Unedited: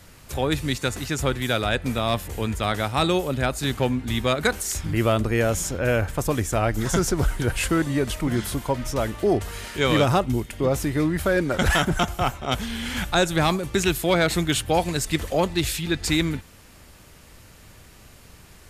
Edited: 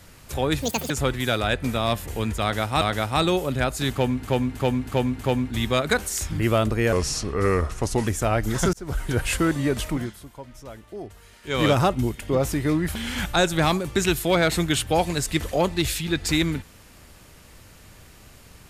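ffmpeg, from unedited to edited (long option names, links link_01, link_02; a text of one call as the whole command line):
ffmpeg -i in.wav -filter_complex "[0:a]asplit=14[link_01][link_02][link_03][link_04][link_05][link_06][link_07][link_08][link_09][link_10][link_11][link_12][link_13][link_14];[link_01]atrim=end=0.624[link_15];[link_02]atrim=start=0.62:end=1.12,asetpts=PTS-STARTPTS,asetrate=78057,aresample=44100[link_16];[link_03]atrim=start=1.116:end=3.032[link_17];[link_04]atrim=start=2.628:end=4.052[link_18];[link_05]atrim=start=3.728:end=4.052[link_19];[link_06]atrim=start=3.728:end=4.052[link_20];[link_07]atrim=start=3.728:end=4.052[link_21];[link_08]atrim=start=3.728:end=5.464[link_22];[link_09]atrim=start=5.46:end=6.38,asetpts=PTS-STARTPTS,asetrate=35280,aresample=44100[link_23];[link_10]atrim=start=6.376:end=7.04,asetpts=PTS-STARTPTS,afade=type=out:start_time=0.66:duration=0.004:curve=hsin[link_24];[link_11]atrim=start=7.04:end=8.44,asetpts=PTS-STARTPTS,afade=type=in:duration=0.39,afade=type=out:start_time=1.17:duration=0.23:silence=0.16788[link_25];[link_12]atrim=start=8.44:end=9.73,asetpts=PTS-STARTPTS,volume=-15.5dB[link_26];[link_13]atrim=start=9.73:end=11.262,asetpts=PTS-STARTPTS,afade=type=in:duration=0.23:silence=0.16788[link_27];[link_14]atrim=start=12.738[link_28];[link_15][link_16]acrossfade=duration=0.004:curve1=hsin:curve2=hsin[link_29];[link_29][link_17]acrossfade=duration=0.004:curve1=hsin:curve2=hsin[link_30];[link_30][link_18]acrossfade=duration=0.004:curve1=hsin:curve2=hsin[link_31];[link_31][link_19]acrossfade=duration=0.004:curve1=hsin:curve2=hsin[link_32];[link_32][link_20]acrossfade=duration=0.004:curve1=hsin:curve2=hsin[link_33];[link_33][link_21]acrossfade=duration=0.004:curve1=hsin:curve2=hsin[link_34];[link_34][link_22]acrossfade=duration=0.004:curve1=hsin:curve2=hsin[link_35];[link_35][link_23]acrossfade=duration=0.004:curve1=hsin:curve2=hsin[link_36];[link_24][link_25][link_26][link_27]concat=n=4:v=0:a=1[link_37];[link_36][link_37]acrossfade=duration=0.004:curve1=hsin:curve2=hsin[link_38];[link_38][link_28]acrossfade=duration=0.004:curve1=hsin:curve2=hsin" out.wav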